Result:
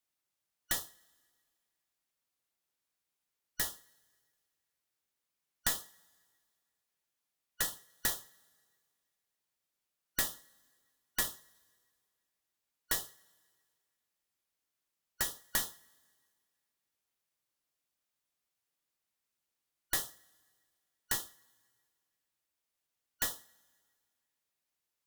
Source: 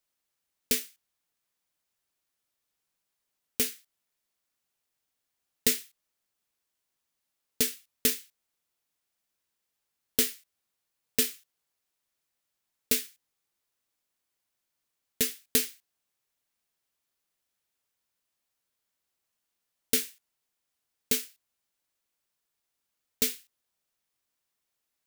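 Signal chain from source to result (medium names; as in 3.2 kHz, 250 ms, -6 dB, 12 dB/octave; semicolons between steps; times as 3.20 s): four frequency bands reordered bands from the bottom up 3142; two-slope reverb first 0.31 s, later 1.9 s, from -18 dB, DRR 16 dB; one-sided clip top -27 dBFS; trim -4.5 dB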